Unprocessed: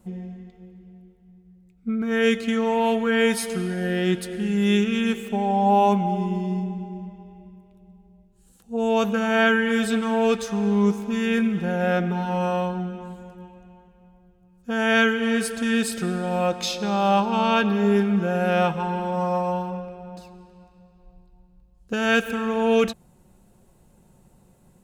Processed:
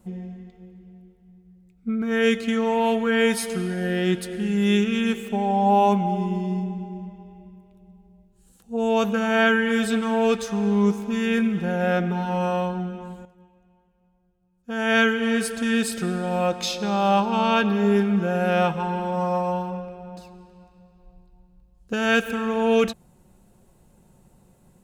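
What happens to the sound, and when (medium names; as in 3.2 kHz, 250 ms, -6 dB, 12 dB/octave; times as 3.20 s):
13.25–14.98 s: upward expansion, over -41 dBFS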